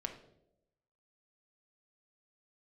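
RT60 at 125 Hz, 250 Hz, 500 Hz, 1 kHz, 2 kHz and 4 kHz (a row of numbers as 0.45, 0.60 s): 1.0, 1.0, 1.0, 0.70, 0.50, 0.55 s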